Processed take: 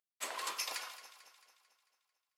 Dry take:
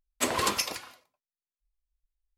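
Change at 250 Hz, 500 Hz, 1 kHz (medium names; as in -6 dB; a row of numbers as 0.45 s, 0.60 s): -26.0 dB, -16.5 dB, -11.5 dB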